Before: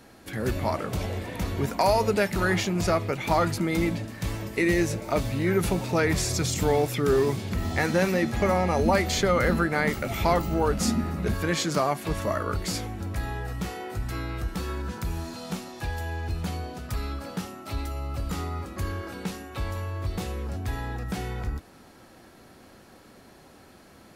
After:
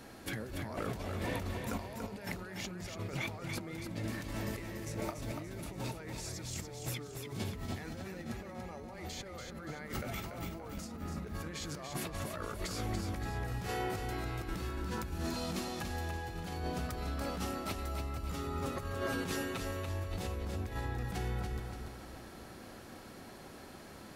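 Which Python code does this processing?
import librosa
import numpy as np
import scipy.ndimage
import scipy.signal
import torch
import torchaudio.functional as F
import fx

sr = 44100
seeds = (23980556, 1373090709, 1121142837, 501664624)

y = fx.comb(x, sr, ms=7.5, depth=0.94, at=(18.33, 19.89))
y = fx.over_compress(y, sr, threshold_db=-35.0, ratio=-1.0)
y = fx.echo_feedback(y, sr, ms=287, feedback_pct=43, wet_db=-6)
y = F.gain(torch.from_numpy(y), -6.5).numpy()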